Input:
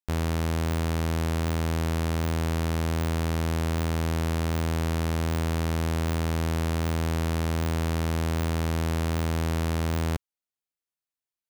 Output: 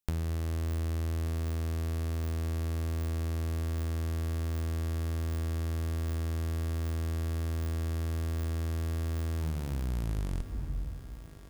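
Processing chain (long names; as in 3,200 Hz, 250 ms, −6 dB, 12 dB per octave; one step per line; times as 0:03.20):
turntable brake at the end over 2.11 s
high-shelf EQ 5,600 Hz +6.5 dB
on a send at −10.5 dB: convolution reverb RT60 1.4 s, pre-delay 3 ms
on the sum: downward compressor 12 to 1, threshold −38 dBFS, peak gain reduction 16 dB
low-shelf EQ 210 Hz +11.5 dB
feedback echo with a high-pass in the loop 1,183 ms, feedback 65%, high-pass 180 Hz, level −13.5 dB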